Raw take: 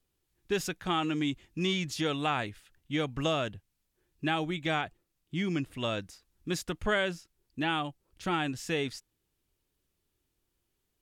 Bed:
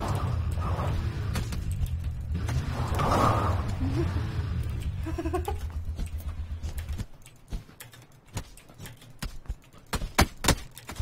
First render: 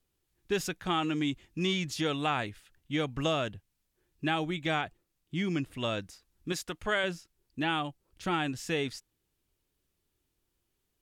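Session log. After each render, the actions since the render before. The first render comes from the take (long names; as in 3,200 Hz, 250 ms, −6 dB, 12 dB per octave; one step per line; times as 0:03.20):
0:06.52–0:07.04: low-shelf EQ 340 Hz −8 dB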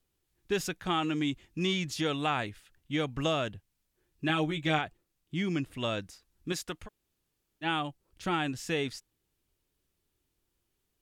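0:04.28–0:04.79: double-tracking delay 13 ms −3.5 dB
0:06.86–0:07.64: fill with room tone, crossfade 0.06 s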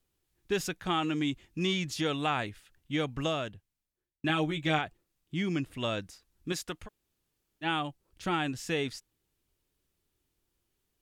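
0:03.07–0:04.24: fade out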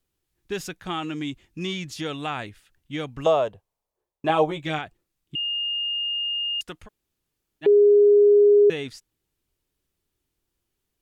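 0:03.26–0:04.60: flat-topped bell 680 Hz +14.5 dB
0:05.35–0:06.61: beep over 2,830 Hz −24 dBFS
0:07.66–0:08.70: beep over 411 Hz −11.5 dBFS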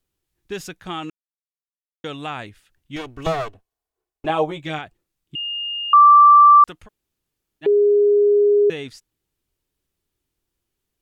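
0:01.10–0:02.04: silence
0:02.96–0:04.26: lower of the sound and its delayed copy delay 2.7 ms
0:05.93–0:06.64: beep over 1,170 Hz −6 dBFS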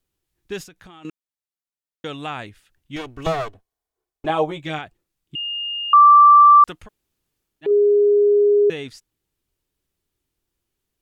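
0:00.63–0:01.05: downward compressor 8 to 1, threshold −41 dBFS
0:03.45–0:04.39: notch filter 2,700 Hz
0:06.41–0:07.71: transient designer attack −5 dB, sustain +3 dB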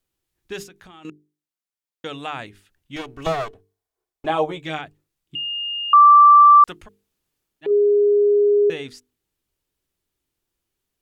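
low-shelf EQ 200 Hz −3 dB
mains-hum notches 50/100/150/200/250/300/350/400/450 Hz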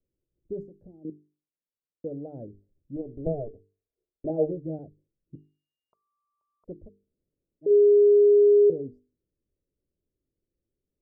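elliptic low-pass filter 570 Hz, stop band 50 dB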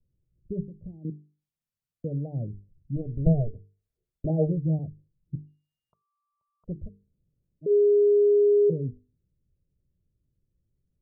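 gate on every frequency bin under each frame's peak −30 dB strong
low shelf with overshoot 220 Hz +11.5 dB, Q 1.5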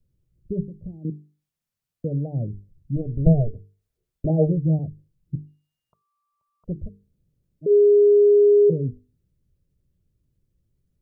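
level +5 dB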